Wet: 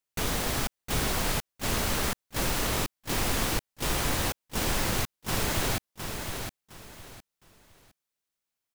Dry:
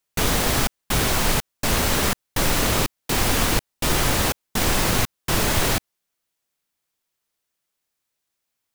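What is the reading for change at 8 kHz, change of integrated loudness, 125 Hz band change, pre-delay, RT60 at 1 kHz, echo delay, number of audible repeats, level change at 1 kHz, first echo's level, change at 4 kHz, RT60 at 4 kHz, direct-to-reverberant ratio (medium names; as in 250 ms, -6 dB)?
-7.5 dB, -8.0 dB, -7.5 dB, no reverb, no reverb, 711 ms, 3, -7.5 dB, -6.5 dB, -7.5 dB, no reverb, no reverb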